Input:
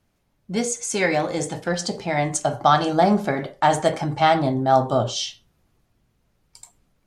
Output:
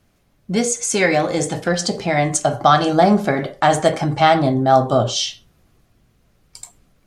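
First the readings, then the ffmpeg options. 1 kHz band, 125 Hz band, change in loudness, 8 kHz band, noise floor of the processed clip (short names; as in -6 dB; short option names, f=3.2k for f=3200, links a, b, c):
+3.5 dB, +4.5 dB, +4.0 dB, +5.5 dB, -61 dBFS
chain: -filter_complex "[0:a]bandreject=f=900:w=10,asplit=2[a][b];[b]acompressor=threshold=-30dB:ratio=6,volume=-2dB[c];[a][c]amix=inputs=2:normalize=0,volume=3dB"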